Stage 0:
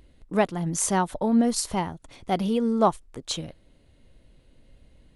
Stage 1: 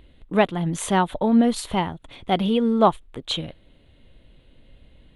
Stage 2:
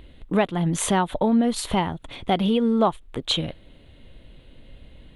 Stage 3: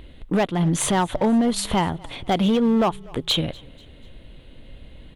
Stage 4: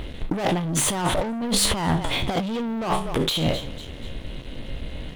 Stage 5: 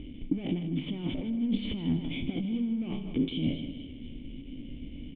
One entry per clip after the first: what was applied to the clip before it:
high shelf with overshoot 4,300 Hz −7 dB, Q 3; level +3.5 dB
downward compressor 2.5 to 1, threshold −25 dBFS, peak gain reduction 9.5 dB; level +5 dB
in parallel at +0.5 dB: brickwall limiter −15 dBFS, peak gain reduction 6.5 dB; on the sum: hard clipping −11.5 dBFS, distortion −16 dB; echo with shifted repeats 245 ms, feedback 46%, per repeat −31 Hz, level −24 dB; level −3 dB
peak hold with a decay on every bin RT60 0.30 s; leveller curve on the samples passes 3; compressor whose output falls as the input rises −17 dBFS, ratio −0.5; level −5 dB
formant resonators in series i; on a send: repeating echo 156 ms, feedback 43%, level −11 dB; on the sum: level +2 dB

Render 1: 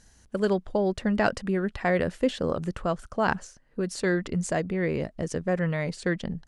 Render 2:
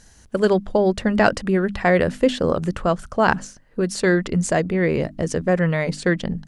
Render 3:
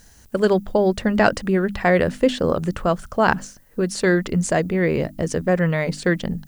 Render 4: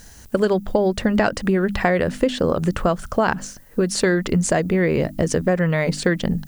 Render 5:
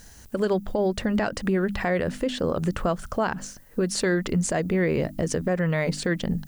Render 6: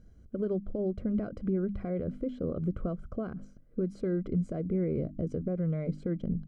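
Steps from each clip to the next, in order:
mains-hum notches 50/100/150/200/250/300 Hz; level +7.5 dB
background noise violet −60 dBFS
downward compressor, threshold −21 dBFS, peak gain reduction 10.5 dB; level +6 dB
brickwall limiter −10.5 dBFS, peak gain reduction 5.5 dB; level −4 dB
moving average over 49 samples; level −4.5 dB

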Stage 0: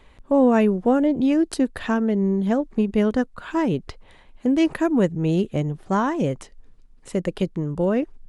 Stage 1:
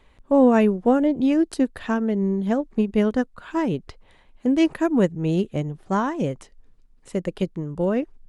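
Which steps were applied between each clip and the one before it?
expander for the loud parts 1.5 to 1, over −26 dBFS
level +1.5 dB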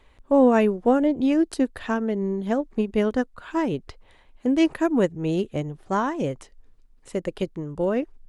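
parametric band 180 Hz −5.5 dB 0.72 octaves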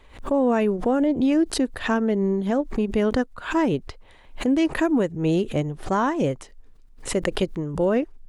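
brickwall limiter −17 dBFS, peak gain reduction 8.5 dB
background raised ahead of every attack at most 140 dB per second
level +3.5 dB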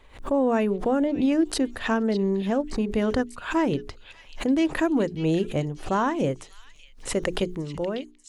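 fade-out on the ending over 0.78 s
mains-hum notches 60/120/180/240/300/360/420 Hz
echo through a band-pass that steps 592 ms, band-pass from 3,400 Hz, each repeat 0.7 octaves, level −8 dB
level −1.5 dB

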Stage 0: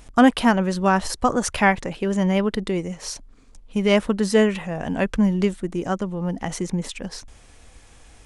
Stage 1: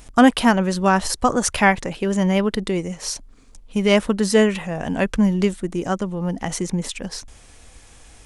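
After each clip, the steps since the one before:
high-shelf EQ 4,600 Hz +5 dB
level +1.5 dB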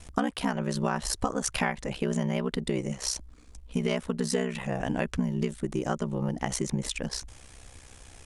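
ring modulation 32 Hz
downward compressor 10 to 1, threshold −24 dBFS, peak gain reduction 15 dB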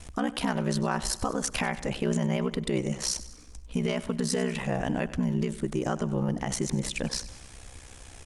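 brickwall limiter −19.5 dBFS, peak gain reduction 7.5 dB
repeating echo 97 ms, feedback 52%, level −16.5 dB
level +2.5 dB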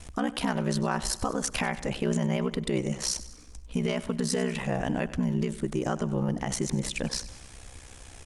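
no processing that can be heard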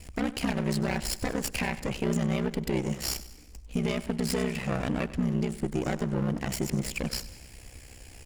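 lower of the sound and its delayed copy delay 0.41 ms

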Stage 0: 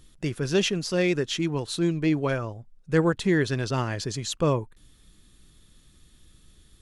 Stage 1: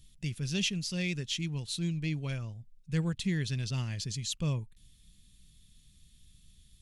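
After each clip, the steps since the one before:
flat-topped bell 690 Hz −15 dB 2.9 octaves
level −3.5 dB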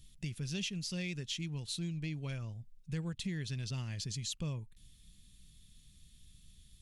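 downward compressor 3 to 1, threshold −37 dBFS, peak gain reduction 9 dB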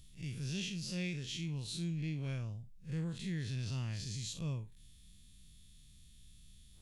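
spectrum smeared in time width 102 ms
level +1.5 dB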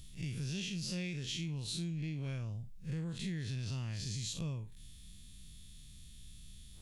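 downward compressor, threshold −42 dBFS, peak gain reduction 8 dB
level +6 dB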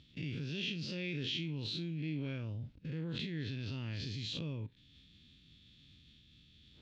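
output level in coarse steps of 16 dB
loudspeaker in its box 120–3,900 Hz, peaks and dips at 130 Hz −4 dB, 190 Hz −7 dB, 280 Hz +5 dB, 730 Hz −8 dB, 1,100 Hz −7 dB, 1,900 Hz −3 dB
level +13.5 dB

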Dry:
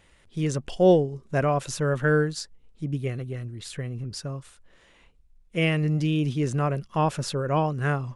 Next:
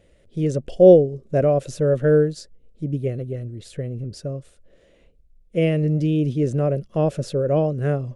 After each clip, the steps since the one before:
low shelf with overshoot 730 Hz +8 dB, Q 3
level −5 dB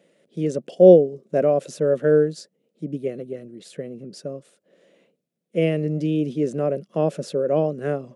Chebyshev high-pass filter 170 Hz, order 4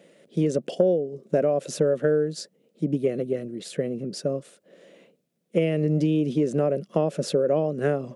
downward compressor 12 to 1, threshold −24 dBFS, peak gain reduction 18.5 dB
level +6 dB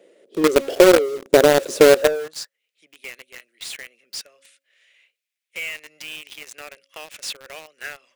hum removal 273.9 Hz, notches 2
high-pass filter sweep 380 Hz → 2,200 Hz, 0:01.87–0:02.62
in parallel at −5 dB: log-companded quantiser 2 bits
on the sum: level −2.5 dB

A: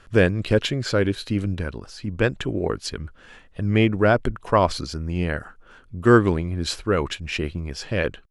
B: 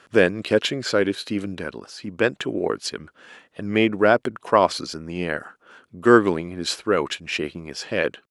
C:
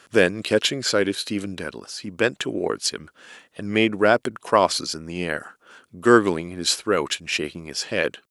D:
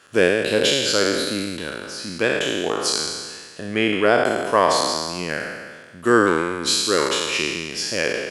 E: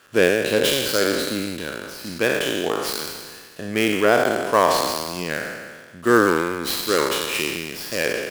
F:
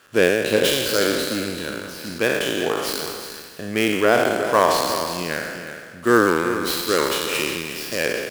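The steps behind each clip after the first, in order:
high-pass filter 240 Hz 12 dB per octave; level +2 dB
high-shelf EQ 4,600 Hz +11.5 dB; level −1 dB
peak hold with a decay on every bin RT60 1.58 s; level −2.5 dB
gap after every zero crossing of 0.072 ms
single-tap delay 364 ms −10.5 dB

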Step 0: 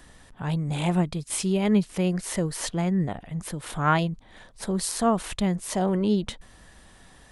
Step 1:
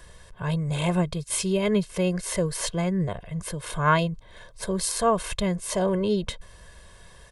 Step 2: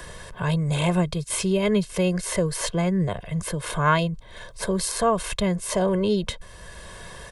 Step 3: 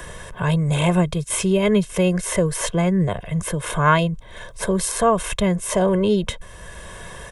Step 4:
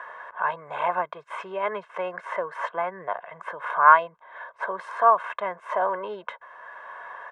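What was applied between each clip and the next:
comb filter 1.9 ms, depth 77%
multiband upward and downward compressor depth 40%; level +2 dB
parametric band 4,500 Hz −10.5 dB 0.3 octaves; level +4 dB
flat-topped band-pass 1,100 Hz, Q 1.3; level +4 dB

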